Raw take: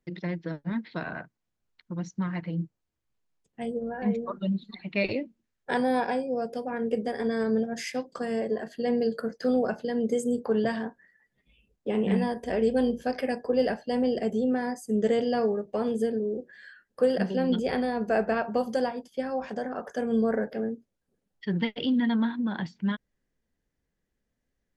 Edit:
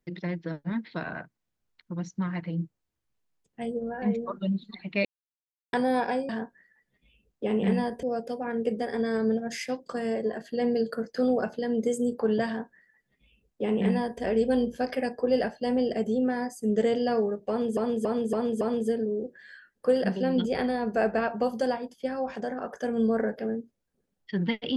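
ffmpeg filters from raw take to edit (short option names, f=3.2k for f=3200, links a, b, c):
-filter_complex "[0:a]asplit=9[a][b][c][d][e][f][g][h][i];[a]atrim=end=5.05,asetpts=PTS-STARTPTS,afade=t=out:st=5.046:d=0.004:c=hsin[j];[b]atrim=start=5.05:end=5.73,asetpts=PTS-STARTPTS,volume=0[k];[c]atrim=start=5.73:end=6.292,asetpts=PTS-STARTPTS,afade=t=in:d=0.004:c=hsin[l];[d]atrim=start=10.728:end=12.472[m];[e]atrim=start=6.288:end=16.032[n];[f]atrim=start=15.748:end=16.032[o];[g]atrim=start=15.748:end=16.032[p];[h]atrim=start=15.748:end=16.032[q];[i]atrim=start=15.748[r];[j][k][l]concat=n=3:v=0:a=1[s];[s][m]acrossfade=d=0.004:c1=hsin:c2=hsin[t];[t][n]acrossfade=d=0.004:c1=hsin:c2=hsin[u];[u][o]acrossfade=d=0.004:c1=hsin:c2=hsin[v];[v][p]acrossfade=d=0.004:c1=hsin:c2=hsin[w];[w][q]acrossfade=d=0.004:c1=hsin:c2=hsin[x];[x][r]acrossfade=d=0.004:c1=hsin:c2=hsin"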